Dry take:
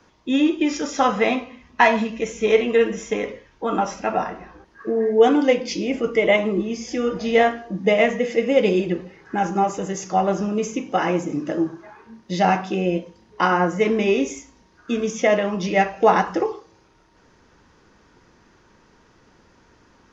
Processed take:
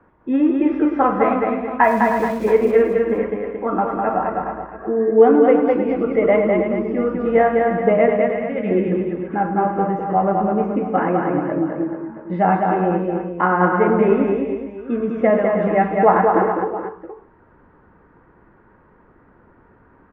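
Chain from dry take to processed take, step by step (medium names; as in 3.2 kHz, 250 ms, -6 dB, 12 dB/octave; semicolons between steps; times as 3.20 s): low-pass 1.7 kHz 24 dB/octave; 1.83–2.51 s: small samples zeroed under -36 dBFS; 8.16–8.71 s: high-order bell 580 Hz -12.5 dB 2.4 oct; multi-tap echo 106/205/311/429/675 ms -13.5/-3.5/-9.5/-10/-15.5 dB; trim +1.5 dB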